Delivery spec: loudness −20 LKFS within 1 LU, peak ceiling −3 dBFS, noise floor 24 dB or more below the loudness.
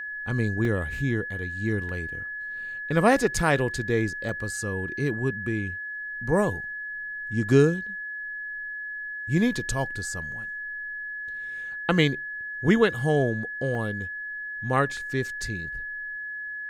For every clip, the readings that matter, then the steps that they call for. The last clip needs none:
number of dropouts 5; longest dropout 1.7 ms; interfering tone 1,700 Hz; level of the tone −32 dBFS; integrated loudness −27.0 LKFS; sample peak −6.0 dBFS; target loudness −20.0 LKFS
→ repair the gap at 0:00.65/0:01.89/0:04.29/0:13.75/0:14.97, 1.7 ms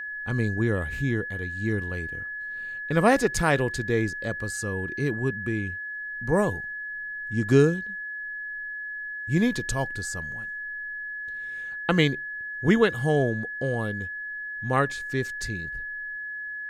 number of dropouts 0; interfering tone 1,700 Hz; level of the tone −32 dBFS
→ notch filter 1,700 Hz, Q 30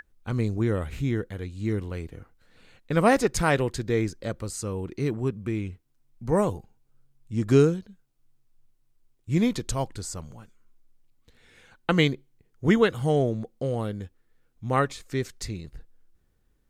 interfering tone none found; integrated loudness −26.5 LKFS; sample peak −6.0 dBFS; target loudness −20.0 LKFS
→ level +6.5 dB
brickwall limiter −3 dBFS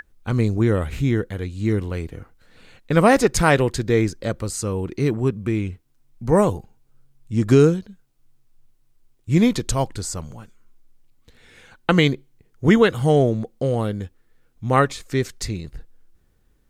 integrated loudness −20.5 LKFS; sample peak −3.0 dBFS; background noise floor −62 dBFS

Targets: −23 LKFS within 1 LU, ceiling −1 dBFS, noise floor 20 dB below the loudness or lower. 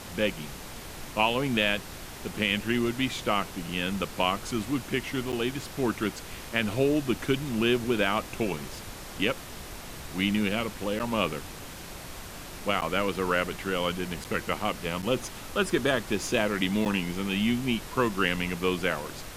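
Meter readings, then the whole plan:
number of dropouts 6; longest dropout 8.2 ms; background noise floor −42 dBFS; target noise floor −49 dBFS; integrated loudness −28.5 LKFS; sample peak −9.5 dBFS; target loudness −23.0 LKFS
→ repair the gap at 0:05.32/0:10.99/0:12.81/0:14.24/0:15.02/0:16.85, 8.2 ms
noise reduction from a noise print 7 dB
level +5.5 dB

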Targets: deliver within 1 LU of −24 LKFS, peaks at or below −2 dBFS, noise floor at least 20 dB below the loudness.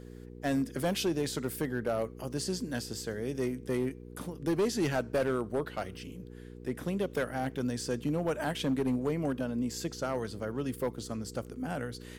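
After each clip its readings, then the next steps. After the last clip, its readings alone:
share of clipped samples 1.4%; peaks flattened at −23.5 dBFS; mains hum 60 Hz; hum harmonics up to 480 Hz; level of the hum −46 dBFS; integrated loudness −33.5 LKFS; sample peak −23.5 dBFS; target loudness −24.0 LKFS
→ clipped peaks rebuilt −23.5 dBFS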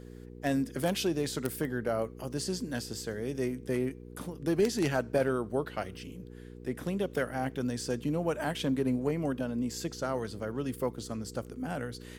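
share of clipped samples 0.0%; mains hum 60 Hz; hum harmonics up to 480 Hz; level of the hum −46 dBFS
→ hum removal 60 Hz, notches 8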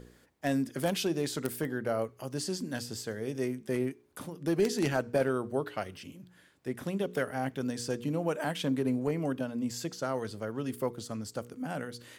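mains hum none found; integrated loudness −33.5 LKFS; sample peak −14.5 dBFS; target loudness −24.0 LKFS
→ level +9.5 dB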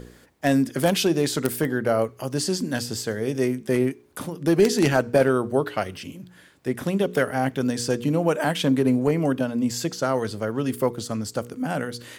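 integrated loudness −24.0 LKFS; sample peak −5.0 dBFS; background noise floor −52 dBFS

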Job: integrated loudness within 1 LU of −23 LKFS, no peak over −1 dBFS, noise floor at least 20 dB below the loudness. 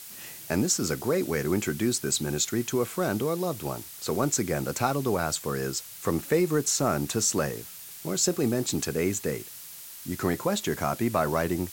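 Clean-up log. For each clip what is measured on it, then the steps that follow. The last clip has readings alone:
background noise floor −44 dBFS; target noise floor −48 dBFS; integrated loudness −27.5 LKFS; sample peak −9.5 dBFS; target loudness −23.0 LKFS
→ noise reduction from a noise print 6 dB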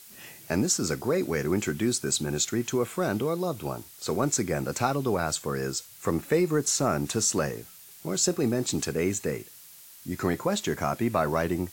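background noise floor −49 dBFS; integrated loudness −27.5 LKFS; sample peak −9.5 dBFS; target loudness −23.0 LKFS
→ level +4.5 dB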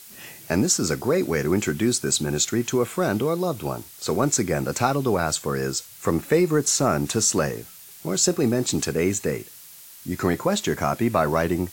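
integrated loudness −23.0 LKFS; sample peak −5.0 dBFS; background noise floor −45 dBFS

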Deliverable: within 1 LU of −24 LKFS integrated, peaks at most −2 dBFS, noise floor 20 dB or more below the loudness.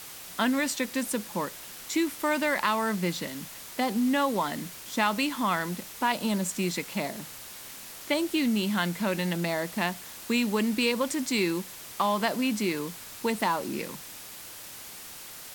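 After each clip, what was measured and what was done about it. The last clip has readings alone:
background noise floor −44 dBFS; target noise floor −49 dBFS; integrated loudness −28.5 LKFS; sample peak −10.5 dBFS; target loudness −24.0 LKFS
→ broadband denoise 6 dB, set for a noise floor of −44 dBFS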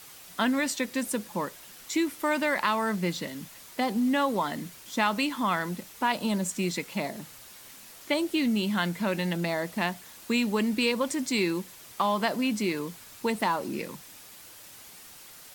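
background noise floor −49 dBFS; integrated loudness −28.5 LKFS; sample peak −11.0 dBFS; target loudness −24.0 LKFS
→ level +4.5 dB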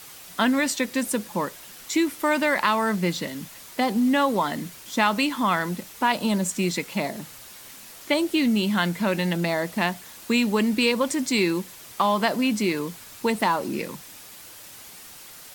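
integrated loudness −24.0 LKFS; sample peak −6.5 dBFS; background noise floor −44 dBFS

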